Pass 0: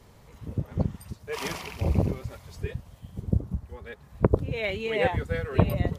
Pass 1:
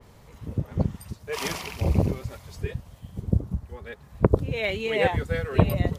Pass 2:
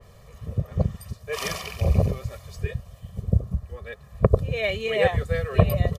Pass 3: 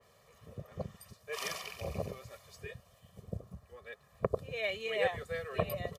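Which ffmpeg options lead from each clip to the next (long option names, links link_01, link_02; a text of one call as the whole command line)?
ffmpeg -i in.wav -af "adynamicequalizer=threshold=0.00794:dfrequency=3200:dqfactor=0.7:tfrequency=3200:tqfactor=0.7:attack=5:release=100:ratio=0.375:range=1.5:mode=boostabove:tftype=highshelf,volume=2dB" out.wav
ffmpeg -i in.wav -af "aecho=1:1:1.7:0.72,volume=-1dB" out.wav
ffmpeg -i in.wav -af "highpass=frequency=450:poles=1,volume=-8dB" out.wav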